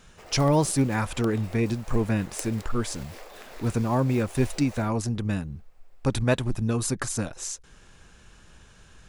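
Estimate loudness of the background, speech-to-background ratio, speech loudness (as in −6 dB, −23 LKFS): −45.5 LKFS, 18.5 dB, −27.0 LKFS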